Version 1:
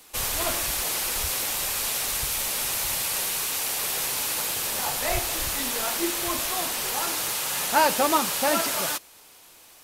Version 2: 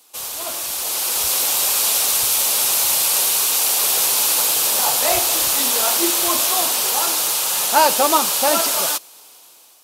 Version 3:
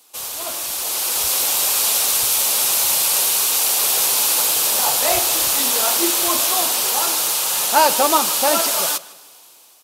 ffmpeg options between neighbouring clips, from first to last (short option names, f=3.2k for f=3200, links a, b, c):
-af "highpass=f=570:p=1,equalizer=f=1.9k:w=1.6:g=-8.5,dynaudnorm=f=420:g=5:m=12dB"
-filter_complex "[0:a]asplit=2[a][b];[b]adelay=156,lowpass=f=5k:p=1,volume=-18.5dB,asplit=2[c][d];[d]adelay=156,lowpass=f=5k:p=1,volume=0.39,asplit=2[e][f];[f]adelay=156,lowpass=f=5k:p=1,volume=0.39[g];[a][c][e][g]amix=inputs=4:normalize=0"